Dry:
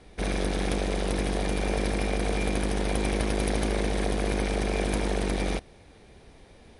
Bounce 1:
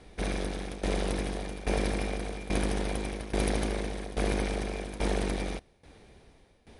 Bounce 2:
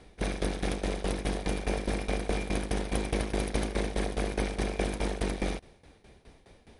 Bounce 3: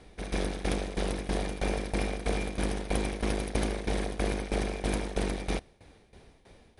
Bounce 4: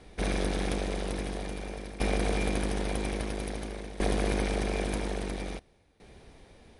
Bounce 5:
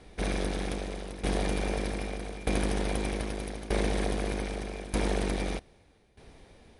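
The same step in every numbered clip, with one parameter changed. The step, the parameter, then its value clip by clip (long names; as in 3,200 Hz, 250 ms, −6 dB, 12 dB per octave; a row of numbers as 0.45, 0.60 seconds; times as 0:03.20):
shaped tremolo, speed: 1.2, 4.8, 3.1, 0.5, 0.81 Hertz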